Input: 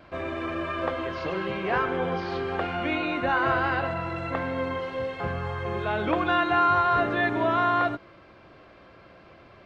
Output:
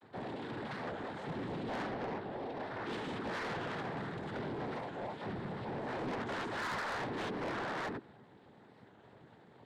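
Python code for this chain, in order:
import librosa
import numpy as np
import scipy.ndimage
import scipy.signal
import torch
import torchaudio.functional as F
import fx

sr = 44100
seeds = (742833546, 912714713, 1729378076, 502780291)

y = fx.chord_vocoder(x, sr, chord='bare fifth', root=50)
y = fx.cheby_ripple(y, sr, hz=2900.0, ripple_db=6, at=(1.93, 2.87))
y = fx.spec_paint(y, sr, seeds[0], shape='rise', start_s=2.04, length_s=0.96, low_hz=340.0, high_hz=1300.0, level_db=-39.0)
y = fx.noise_vocoder(y, sr, seeds[1], bands=6)
y = 10.0 ** (-28.5 / 20.0) * np.tanh(y / 10.0 ** (-28.5 / 20.0))
y = fx.record_warp(y, sr, rpm=45.0, depth_cents=160.0)
y = y * librosa.db_to_amplitude(-6.5)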